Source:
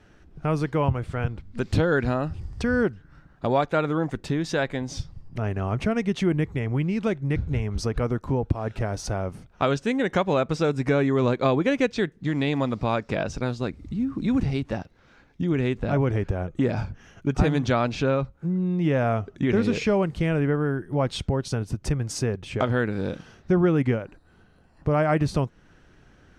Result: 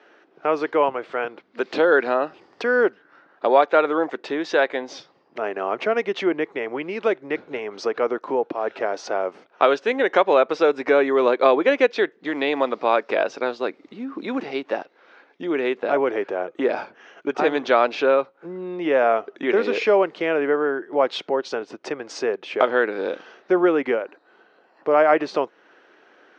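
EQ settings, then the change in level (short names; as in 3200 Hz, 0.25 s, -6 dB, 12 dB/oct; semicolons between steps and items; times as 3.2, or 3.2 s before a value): HPF 370 Hz 24 dB/oct; LPF 8200 Hz; air absorption 180 m; +8.0 dB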